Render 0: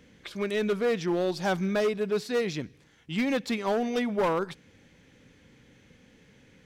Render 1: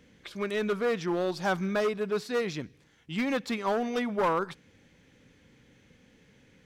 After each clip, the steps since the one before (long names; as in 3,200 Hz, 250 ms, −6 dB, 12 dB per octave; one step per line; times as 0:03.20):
dynamic equaliser 1,200 Hz, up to +6 dB, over −44 dBFS, Q 1.5
level −2.5 dB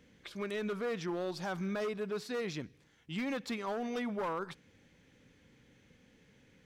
brickwall limiter −25.5 dBFS, peak gain reduction 7 dB
level −4 dB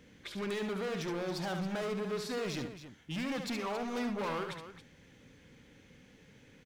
hard clipping −38.5 dBFS, distortion −9 dB
on a send: loudspeakers that aren't time-aligned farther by 24 metres −7 dB, 94 metres −12 dB
on the sum: level +4 dB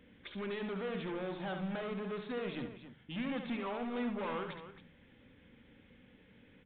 on a send at −15 dB: convolution reverb RT60 0.50 s, pre-delay 3 ms
on the sum: downsampling to 8,000 Hz
level −3 dB